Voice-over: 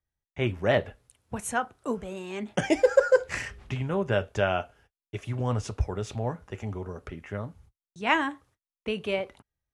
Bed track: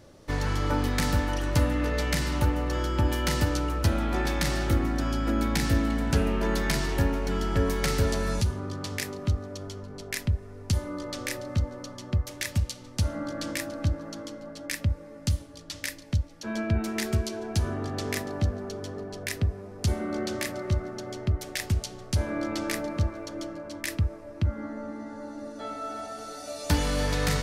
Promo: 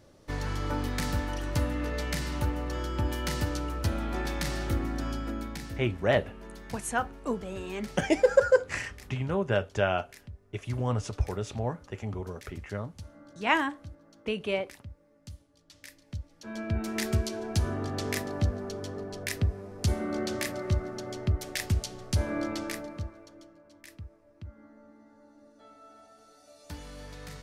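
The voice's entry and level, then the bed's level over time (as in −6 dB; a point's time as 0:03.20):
5.40 s, −1.0 dB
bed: 0:05.11 −5 dB
0:05.94 −19 dB
0:15.55 −19 dB
0:17.02 −1 dB
0:22.42 −1 dB
0:23.51 −18 dB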